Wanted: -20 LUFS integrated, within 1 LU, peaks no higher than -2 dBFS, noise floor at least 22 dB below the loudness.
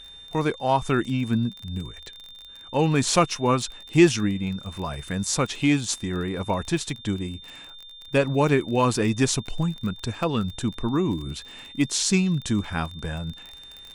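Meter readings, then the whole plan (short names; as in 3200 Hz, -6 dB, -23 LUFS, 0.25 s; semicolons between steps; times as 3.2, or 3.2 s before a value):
ticks 27/s; steady tone 3600 Hz; tone level -42 dBFS; loudness -24.5 LUFS; peak -4.5 dBFS; loudness target -20.0 LUFS
-> de-click; notch 3600 Hz, Q 30; gain +4.5 dB; limiter -2 dBFS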